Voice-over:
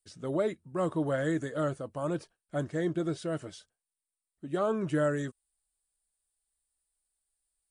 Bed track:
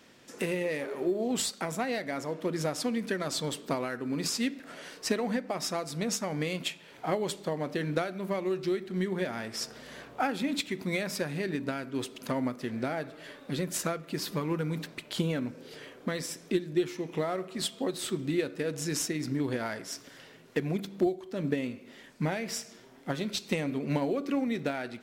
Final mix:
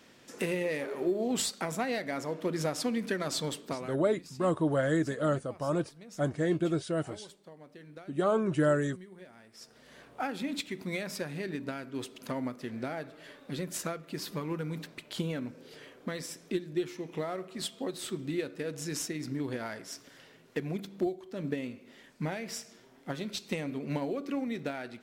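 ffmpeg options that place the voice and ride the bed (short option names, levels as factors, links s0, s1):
-filter_complex "[0:a]adelay=3650,volume=1.26[s0];[1:a]volume=5.31,afade=t=out:st=3.42:d=0.66:silence=0.11885,afade=t=in:st=9.52:d=0.83:silence=0.177828[s1];[s0][s1]amix=inputs=2:normalize=0"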